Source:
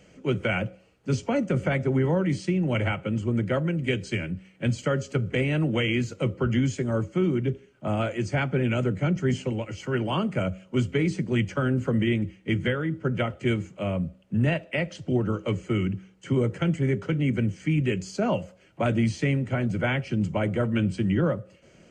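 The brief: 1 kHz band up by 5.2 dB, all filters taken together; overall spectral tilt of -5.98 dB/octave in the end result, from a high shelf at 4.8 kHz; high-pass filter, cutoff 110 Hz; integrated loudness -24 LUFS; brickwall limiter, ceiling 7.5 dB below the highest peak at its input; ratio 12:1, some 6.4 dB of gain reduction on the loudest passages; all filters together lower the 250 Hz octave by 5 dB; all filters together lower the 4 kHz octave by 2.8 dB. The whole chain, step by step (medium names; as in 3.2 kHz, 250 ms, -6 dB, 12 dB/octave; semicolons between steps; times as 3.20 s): high-pass 110 Hz; peaking EQ 250 Hz -7 dB; peaking EQ 1 kHz +8 dB; peaking EQ 4 kHz -8 dB; treble shelf 4.8 kHz +6 dB; compression 12:1, threshold -26 dBFS; trim +9.5 dB; peak limiter -12.5 dBFS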